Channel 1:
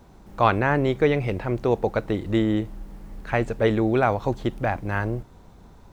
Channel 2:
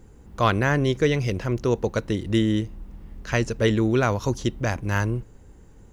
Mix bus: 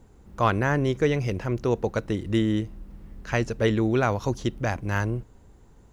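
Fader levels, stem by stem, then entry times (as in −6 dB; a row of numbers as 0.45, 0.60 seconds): −11.0, −5.0 decibels; 0.00, 0.00 seconds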